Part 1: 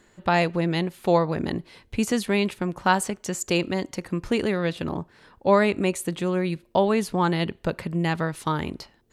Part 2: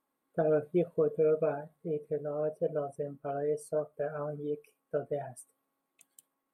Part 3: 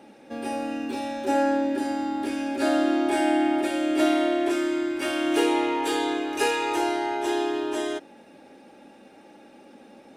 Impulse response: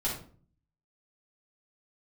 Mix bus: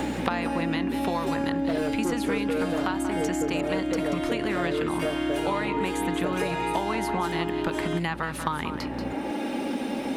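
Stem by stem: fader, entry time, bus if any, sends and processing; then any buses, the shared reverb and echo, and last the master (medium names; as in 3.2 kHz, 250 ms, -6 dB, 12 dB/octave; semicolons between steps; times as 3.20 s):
+2.5 dB, 0.00 s, no send, echo send -12 dB, resonant low shelf 740 Hz -7 dB, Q 1.5; compression, threshold -29 dBFS, peak gain reduction 14.5 dB; hum 60 Hz, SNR 14 dB
+2.0 dB, 1.30 s, no send, no echo send, hard clipper -28.5 dBFS, distortion -10 dB
+3.0 dB, 0.00 s, no send, no echo send, compression 4:1, threshold -35 dBFS, peak gain reduction 15 dB; small resonant body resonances 270/960/2100/3100 Hz, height 7 dB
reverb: none
echo: delay 184 ms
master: peaking EQ 6.3 kHz -5.5 dB 1.5 oct; three bands compressed up and down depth 100%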